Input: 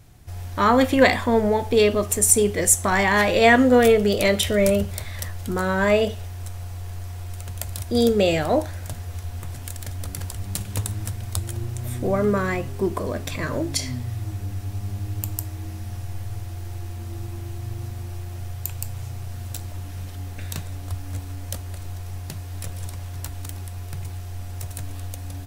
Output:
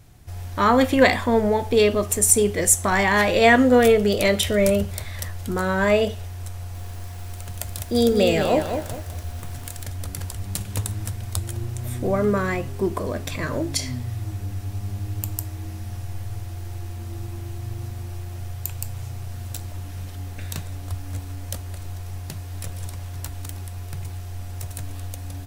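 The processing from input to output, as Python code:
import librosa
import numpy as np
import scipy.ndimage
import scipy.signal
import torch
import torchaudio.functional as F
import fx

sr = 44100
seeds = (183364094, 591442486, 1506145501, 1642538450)

y = fx.echo_crushed(x, sr, ms=204, feedback_pct=35, bits=7, wet_db=-6.5, at=(6.54, 9.83))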